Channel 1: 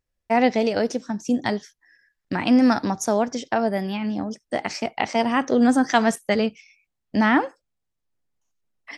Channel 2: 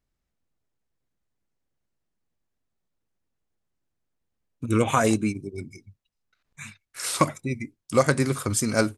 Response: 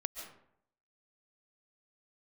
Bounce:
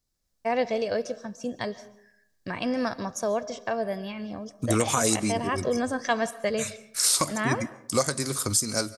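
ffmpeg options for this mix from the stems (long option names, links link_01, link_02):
-filter_complex "[0:a]aecho=1:1:1.8:0.55,adelay=150,volume=-9.5dB,asplit=2[link_01][link_02];[link_02]volume=-9dB[link_03];[1:a]acrossover=split=450|3000[link_04][link_05][link_06];[link_04]acompressor=threshold=-24dB:ratio=6[link_07];[link_07][link_05][link_06]amix=inputs=3:normalize=0,highshelf=frequency=3500:width_type=q:width=1.5:gain=8.5,dynaudnorm=framelen=220:gausssize=3:maxgain=5dB,volume=-3dB,asplit=2[link_08][link_09];[link_09]volume=-15dB[link_10];[2:a]atrim=start_sample=2205[link_11];[link_03][link_10]amix=inputs=2:normalize=0[link_12];[link_12][link_11]afir=irnorm=-1:irlink=0[link_13];[link_01][link_08][link_13]amix=inputs=3:normalize=0,alimiter=limit=-10.5dB:level=0:latency=1:release=320"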